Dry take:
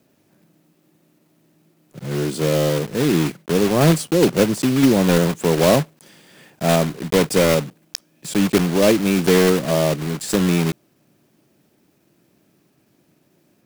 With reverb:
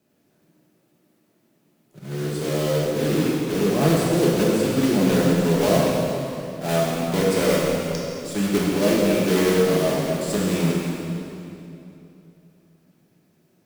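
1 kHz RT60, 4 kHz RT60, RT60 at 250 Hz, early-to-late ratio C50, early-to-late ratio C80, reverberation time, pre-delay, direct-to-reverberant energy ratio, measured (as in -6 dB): 2.7 s, 2.4 s, 3.4 s, -2.0 dB, 0.0 dB, 2.9 s, 3 ms, -5.5 dB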